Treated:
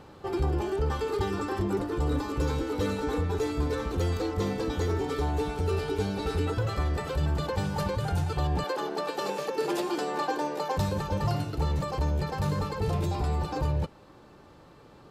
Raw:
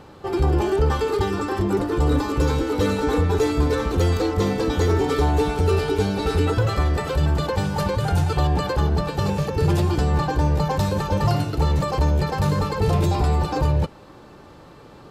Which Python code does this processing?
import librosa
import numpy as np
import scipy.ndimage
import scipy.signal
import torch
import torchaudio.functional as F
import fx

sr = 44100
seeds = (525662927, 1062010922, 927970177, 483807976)

y = fx.highpass(x, sr, hz=290.0, slope=24, at=(8.64, 10.77))
y = fx.rider(y, sr, range_db=4, speed_s=0.5)
y = y * librosa.db_to_amplitude(-7.5)